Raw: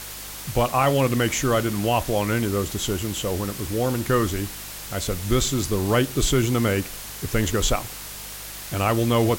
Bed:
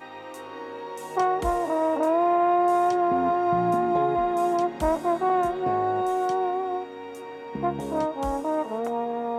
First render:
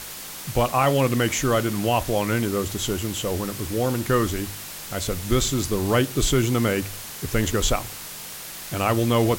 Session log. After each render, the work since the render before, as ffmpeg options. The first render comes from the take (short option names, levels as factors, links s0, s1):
-af "bandreject=f=50:t=h:w=4,bandreject=f=100:t=h:w=4"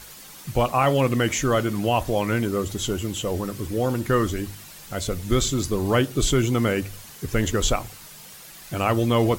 -af "afftdn=nr=9:nf=-37"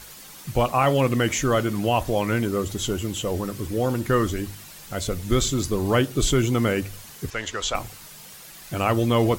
-filter_complex "[0:a]asettb=1/sr,asplit=3[s0][s1][s2];[s0]atrim=end=7.304[s3];[s1]atrim=start=7.3:end=7.75,asetpts=PTS-STARTPTS,afade=t=in:d=0.004:c=qsin,afade=t=out:st=0.446:d=0.004:c=qsin,acrossover=split=580 7300:gain=0.158 1 0.1[s4][s5][s6];[s4][s5][s6]amix=inputs=3:normalize=0[s7];[s2]atrim=start=7.746[s8];[s3][s7]acrossfade=d=0.004:c1=hsin:c2=qsin[s9];[s9][s8]acrossfade=d=0.004:c1=qsin:c2=hsin"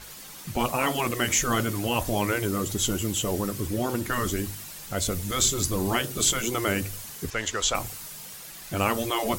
-af "afftfilt=real='re*lt(hypot(re,im),0.447)':imag='im*lt(hypot(re,im),0.447)':win_size=1024:overlap=0.75,adynamicequalizer=threshold=0.00708:dfrequency=5700:dqfactor=0.7:tfrequency=5700:tqfactor=0.7:attack=5:release=100:ratio=0.375:range=3.5:mode=boostabove:tftype=highshelf"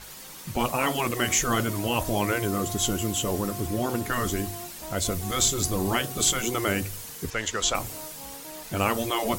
-filter_complex "[1:a]volume=0.126[s0];[0:a][s0]amix=inputs=2:normalize=0"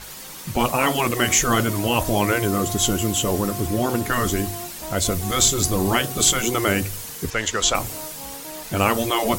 -af "volume=1.88"